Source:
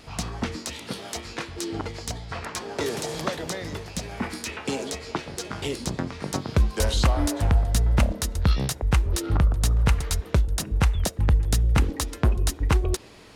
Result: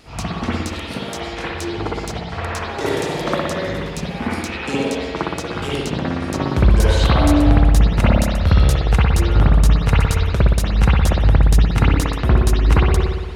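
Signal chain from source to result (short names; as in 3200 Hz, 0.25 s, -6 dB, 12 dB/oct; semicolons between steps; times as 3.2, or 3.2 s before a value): spring tank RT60 1.3 s, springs 58 ms, chirp 40 ms, DRR -8 dB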